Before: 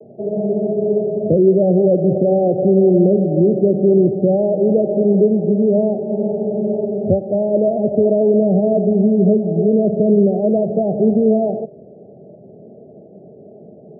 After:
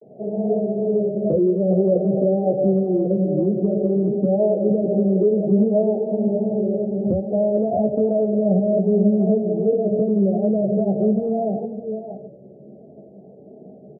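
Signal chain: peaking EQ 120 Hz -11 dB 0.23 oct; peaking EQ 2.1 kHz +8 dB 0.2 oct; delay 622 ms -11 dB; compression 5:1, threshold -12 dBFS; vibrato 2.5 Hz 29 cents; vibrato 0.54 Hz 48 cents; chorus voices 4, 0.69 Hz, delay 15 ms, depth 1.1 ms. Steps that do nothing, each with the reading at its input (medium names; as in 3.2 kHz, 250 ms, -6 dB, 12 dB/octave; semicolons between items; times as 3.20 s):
peaking EQ 2.1 kHz: input has nothing above 810 Hz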